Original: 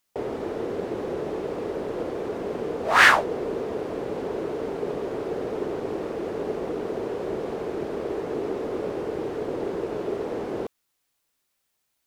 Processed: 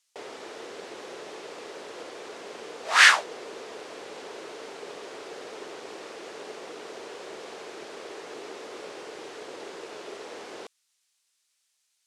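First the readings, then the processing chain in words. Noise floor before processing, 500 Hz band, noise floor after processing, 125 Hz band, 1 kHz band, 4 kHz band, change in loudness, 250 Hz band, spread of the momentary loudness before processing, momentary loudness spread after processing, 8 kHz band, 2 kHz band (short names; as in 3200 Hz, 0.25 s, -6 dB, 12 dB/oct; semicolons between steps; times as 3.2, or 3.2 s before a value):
-76 dBFS, -12.0 dB, -75 dBFS, under -20 dB, -5.0 dB, +4.0 dB, +8.0 dB, -15.5 dB, 6 LU, 10 LU, +6.0 dB, -1.0 dB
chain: weighting filter ITU-R 468; gain -5.5 dB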